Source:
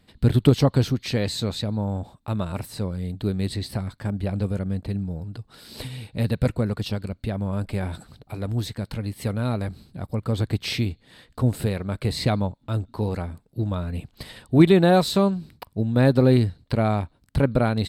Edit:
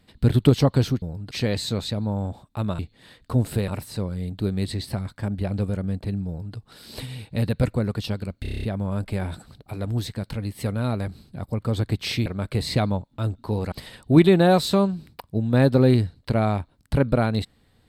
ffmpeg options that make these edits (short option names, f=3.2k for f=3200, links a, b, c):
-filter_complex "[0:a]asplit=14[a][b][c][d][e][f][g][h][i][j][k][l][m][n];[a]atrim=end=1.022[o];[b]atrim=start=5.088:end=5.382[p];[c]atrim=start=1.018:end=2.502[q];[d]atrim=start=10.868:end=11.762[r];[e]atrim=start=2.498:end=7.272[s];[f]atrim=start=7.238:end=7.272[t];[g]atrim=start=7.238:end=7.272[u];[h]atrim=start=7.238:end=7.272[v];[i]atrim=start=7.238:end=7.272[w];[j]atrim=start=7.238:end=7.272[x];[k]atrim=start=7.238:end=7.272[y];[l]atrim=start=7.238:end=10.872[z];[m]atrim=start=11.758:end=13.222[aa];[n]atrim=start=14.148[ab];[o][p]acrossfade=d=0.004:c1=hsin:c2=hsin[ac];[ac][q]acrossfade=d=0.004:c1=hsin:c2=hsin[ad];[ad][r]acrossfade=d=0.004:c1=hsin:c2=hsin[ae];[ae][s]acrossfade=d=0.004:c1=hsin:c2=hsin[af];[af][t]acrossfade=d=0.004:c1=hsin:c2=hsin[ag];[ag][u]acrossfade=d=0.004:c1=hsin:c2=hsin[ah];[ah][v]acrossfade=d=0.004:c1=hsin:c2=hsin[ai];[ai][w]acrossfade=d=0.004:c1=hsin:c2=hsin[aj];[aj][x]acrossfade=d=0.004:c1=hsin:c2=hsin[ak];[ak][y]acrossfade=d=0.004:c1=hsin:c2=hsin[al];[al][z]acrossfade=d=0.004:c1=hsin:c2=hsin[am];[am][aa]acrossfade=d=0.004:c1=hsin:c2=hsin[an];[an][ab]acrossfade=d=0.004:c1=hsin:c2=hsin"